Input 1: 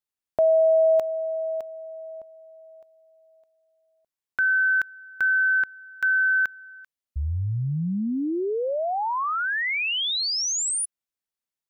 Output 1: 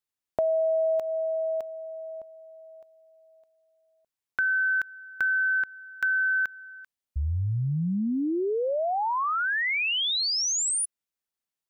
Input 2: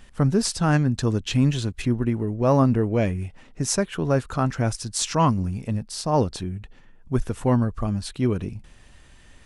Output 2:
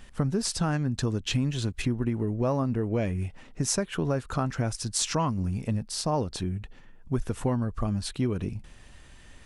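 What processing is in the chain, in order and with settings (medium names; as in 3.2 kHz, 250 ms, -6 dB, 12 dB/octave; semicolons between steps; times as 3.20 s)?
compression 6:1, threshold -23 dBFS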